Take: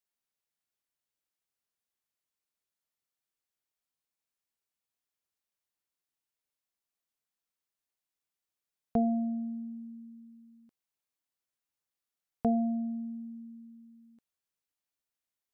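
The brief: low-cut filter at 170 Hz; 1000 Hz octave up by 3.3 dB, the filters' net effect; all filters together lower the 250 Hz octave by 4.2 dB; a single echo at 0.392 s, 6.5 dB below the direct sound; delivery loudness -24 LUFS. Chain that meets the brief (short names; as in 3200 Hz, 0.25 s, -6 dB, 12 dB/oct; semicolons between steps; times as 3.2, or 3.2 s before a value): HPF 170 Hz; bell 250 Hz -3.5 dB; bell 1000 Hz +7.5 dB; echo 0.392 s -6.5 dB; gain +10.5 dB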